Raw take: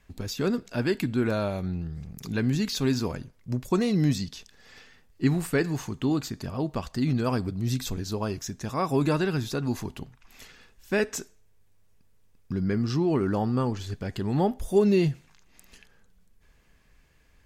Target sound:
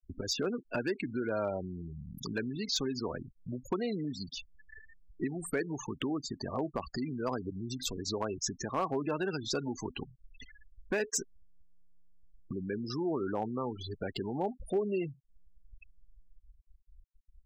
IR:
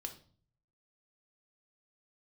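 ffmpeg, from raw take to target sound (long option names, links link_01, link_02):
-filter_complex "[0:a]asettb=1/sr,asplit=3[link_01][link_02][link_03];[link_01]atrim=end=9.244[link_04];[link_02]atrim=start=9.24:end=12.89,asetpts=PTS-STARTPTS,afade=type=in:duration=0.004:curve=qsin,afade=type=out:start_time=3.646:duration=0.004:curve=qsin,adynamicequalizer=threshold=0.00398:dfrequency=5900:dqfactor=1:tfrequency=5900:tqfactor=1:attack=5:release=100:ratio=0.375:range=2:mode=boostabove:tftype=bell[link_05];[link_03]atrim=start=12.886[link_06];[link_04][link_05]acrossfade=duration=0.004:curve1=hsin:curve2=qsin[link_07];[link_07][link_06]acrossfade=duration=0.004:curve1=qsin:curve2=hsin,acompressor=threshold=-32dB:ratio=6,afftfilt=real='re*gte(hypot(re,im),0.0126)':imag='im*gte(hypot(re,im),0.0126)':win_size=1024:overlap=0.75,acrossover=split=290|3000[link_08][link_09][link_10];[link_08]acompressor=threshold=-50dB:ratio=4[link_11];[link_11][link_09][link_10]amix=inputs=3:normalize=0,asoftclip=type=hard:threshold=-28.5dB,volume=5.5dB"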